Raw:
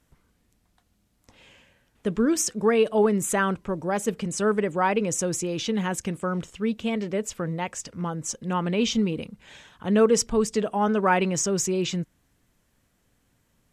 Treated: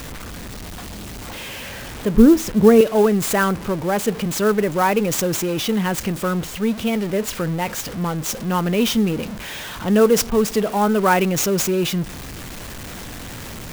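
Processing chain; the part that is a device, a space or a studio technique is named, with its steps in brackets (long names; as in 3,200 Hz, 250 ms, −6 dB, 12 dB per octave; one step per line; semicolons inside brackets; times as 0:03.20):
0:02.14–0:02.81: spectral tilt −4 dB per octave
early CD player with a faulty converter (converter with a step at zero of −31 dBFS; converter with an unsteady clock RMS 0.022 ms)
level +4 dB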